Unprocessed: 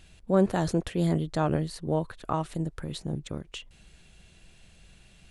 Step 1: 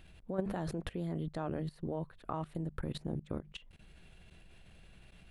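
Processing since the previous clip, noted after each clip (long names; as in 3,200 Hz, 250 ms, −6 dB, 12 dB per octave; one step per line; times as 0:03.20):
mains-hum notches 50/100/150/200 Hz
output level in coarse steps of 19 dB
parametric band 6,700 Hz −12.5 dB 1.4 octaves
level +1.5 dB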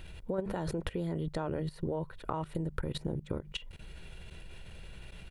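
comb filter 2.1 ms, depth 35%
downward compressor 6 to 1, threshold −39 dBFS, peak gain reduction 10.5 dB
level +8.5 dB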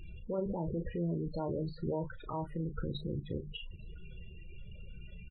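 transient designer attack −4 dB, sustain +5 dB
spectral peaks only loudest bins 16
double-tracking delay 35 ms −10 dB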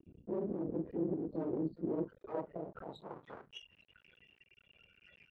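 random phases in long frames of 50 ms
half-wave rectification
band-pass filter sweep 310 Hz → 1,700 Hz, 0:01.92–0:03.59
level +9 dB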